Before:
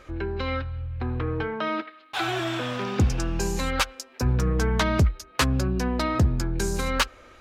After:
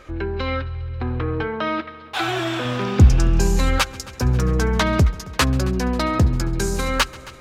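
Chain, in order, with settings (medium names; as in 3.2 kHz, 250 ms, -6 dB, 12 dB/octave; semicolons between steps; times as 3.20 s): 2.65–3.78 s: bass shelf 140 Hz +9 dB; on a send: multi-head delay 135 ms, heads first and second, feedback 70%, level -23.5 dB; on the sum: trim +4 dB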